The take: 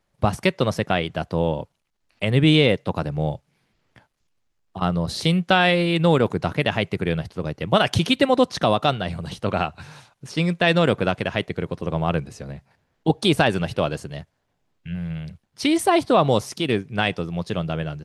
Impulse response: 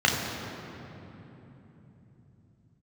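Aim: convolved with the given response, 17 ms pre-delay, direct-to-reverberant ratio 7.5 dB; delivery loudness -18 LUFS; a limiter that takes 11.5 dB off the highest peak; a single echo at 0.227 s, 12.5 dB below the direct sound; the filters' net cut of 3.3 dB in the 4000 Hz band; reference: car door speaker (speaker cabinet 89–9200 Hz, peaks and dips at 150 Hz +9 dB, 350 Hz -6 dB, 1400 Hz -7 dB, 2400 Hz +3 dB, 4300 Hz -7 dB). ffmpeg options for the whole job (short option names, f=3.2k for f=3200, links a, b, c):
-filter_complex "[0:a]equalizer=f=4k:t=o:g=-3,alimiter=limit=-15dB:level=0:latency=1,aecho=1:1:227:0.237,asplit=2[a][b];[1:a]atrim=start_sample=2205,adelay=17[c];[b][c]afir=irnorm=-1:irlink=0,volume=-24.5dB[d];[a][d]amix=inputs=2:normalize=0,highpass=89,equalizer=f=150:t=q:w=4:g=9,equalizer=f=350:t=q:w=4:g=-6,equalizer=f=1.4k:t=q:w=4:g=-7,equalizer=f=2.4k:t=q:w=4:g=3,equalizer=f=4.3k:t=q:w=4:g=-7,lowpass=f=9.2k:w=0.5412,lowpass=f=9.2k:w=1.3066,volume=6.5dB"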